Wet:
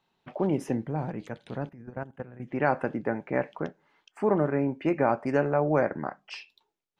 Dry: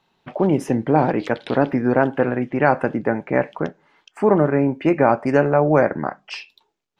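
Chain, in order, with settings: 1.69–2.40 s: level held to a coarse grid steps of 16 dB; 0.87–2.48 s: time-frequency box 220–5900 Hz -9 dB; trim -8.5 dB

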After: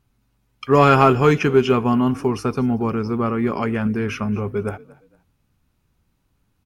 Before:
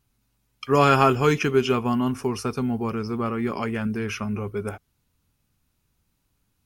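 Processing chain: treble shelf 3.3 kHz -9.5 dB; in parallel at -8 dB: hard clipper -14 dBFS, distortion -14 dB; on the sum: frequency-shifting echo 231 ms, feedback 30%, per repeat +38 Hz, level -22 dB; trim +2.5 dB

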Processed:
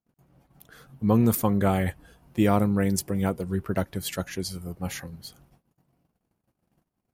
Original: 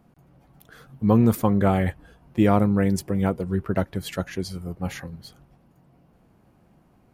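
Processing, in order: gate -55 dBFS, range -29 dB; treble shelf 4.5 kHz +6 dB, from 1.14 s +11 dB; trim -3 dB

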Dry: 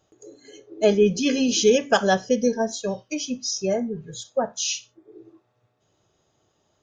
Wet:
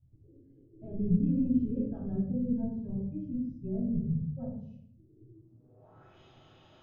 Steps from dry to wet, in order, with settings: peak limiter -14 dBFS, peak gain reduction 8 dB; low-pass sweep 100 Hz -> 3 kHz, 5.30–6.18 s; reverberation RT60 0.65 s, pre-delay 7 ms, DRR -6.5 dB; trim -1.5 dB

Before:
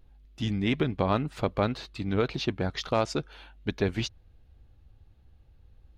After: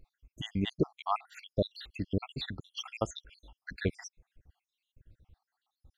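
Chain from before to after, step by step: random holes in the spectrogram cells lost 74%

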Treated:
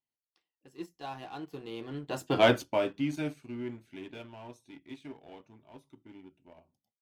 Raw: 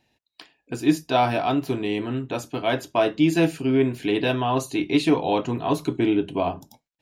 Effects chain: Doppler pass-by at 2.42 s, 32 m/s, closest 2.9 m; waveshaping leveller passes 1

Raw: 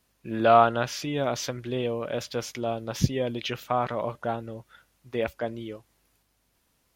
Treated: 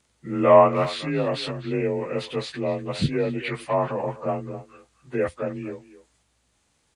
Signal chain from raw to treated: frequency axis rescaled in octaves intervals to 89%; speakerphone echo 250 ms, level -14 dB; trim +4.5 dB

